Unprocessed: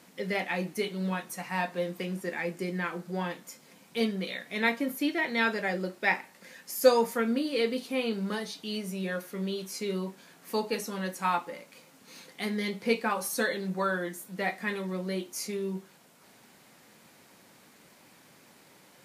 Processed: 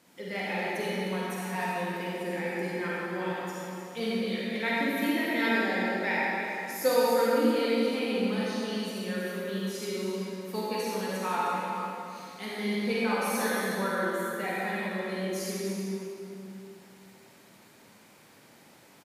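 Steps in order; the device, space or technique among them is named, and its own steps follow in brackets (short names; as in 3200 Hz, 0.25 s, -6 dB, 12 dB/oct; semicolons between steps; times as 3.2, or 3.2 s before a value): cave (echo 0.307 s -10 dB; reverb RT60 2.8 s, pre-delay 39 ms, DRR -6.5 dB); gain -6.5 dB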